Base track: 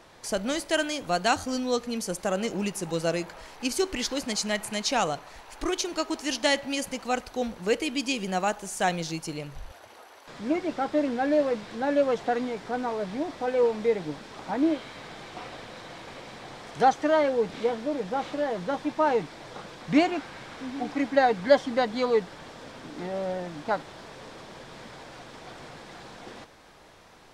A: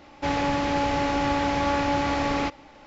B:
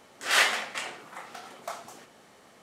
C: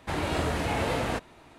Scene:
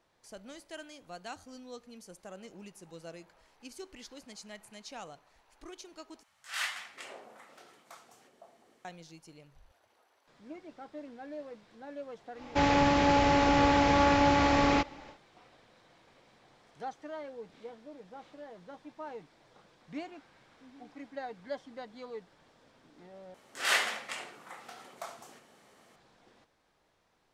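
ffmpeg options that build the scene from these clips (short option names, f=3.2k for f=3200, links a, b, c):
-filter_complex "[2:a]asplit=2[a][b];[0:a]volume=-19.5dB[c];[a]acrossover=split=160|750[d][e][f];[d]adelay=50[g];[e]adelay=510[h];[g][h][f]amix=inputs=3:normalize=0[i];[b]aecho=1:1:72:0.2[j];[c]asplit=3[k][l][m];[k]atrim=end=6.234[n];[i]atrim=end=2.62,asetpts=PTS-STARTPTS,volume=-12dB[o];[l]atrim=start=8.846:end=23.344[p];[j]atrim=end=2.62,asetpts=PTS-STARTPTS,volume=-5.5dB[q];[m]atrim=start=25.956[r];[1:a]atrim=end=2.86,asetpts=PTS-STARTPTS,afade=t=in:d=0.1,afade=t=out:st=2.76:d=0.1,adelay=12330[s];[n][o]acrossfade=d=0.004:c1=hsin:c2=hsin[t];[t][p]acrossfade=d=0.004:c1=hsin:c2=hsin[u];[u][q]acrossfade=d=0.004:c1=hsin:c2=hsin[v];[v][r]acrossfade=d=0.004:c1=hsin:c2=hsin[w];[w][s]amix=inputs=2:normalize=0"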